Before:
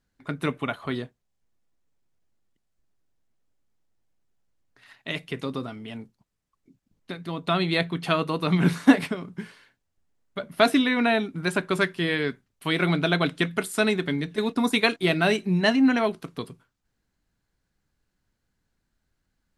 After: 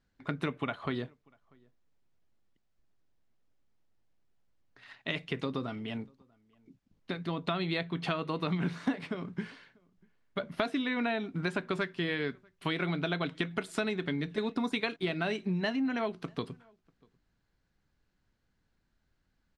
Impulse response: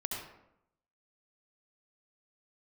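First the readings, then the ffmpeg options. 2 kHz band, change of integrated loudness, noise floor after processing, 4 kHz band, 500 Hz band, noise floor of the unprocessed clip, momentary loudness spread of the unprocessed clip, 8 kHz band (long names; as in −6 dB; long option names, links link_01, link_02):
−9.5 dB, −10.0 dB, −77 dBFS, −9.5 dB, −9.0 dB, −78 dBFS, 18 LU, −14.5 dB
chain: -filter_complex "[0:a]lowpass=5300,acompressor=threshold=-29dB:ratio=6,asplit=2[link_01][link_02];[link_02]adelay=641.4,volume=-29dB,highshelf=frequency=4000:gain=-14.4[link_03];[link_01][link_03]amix=inputs=2:normalize=0"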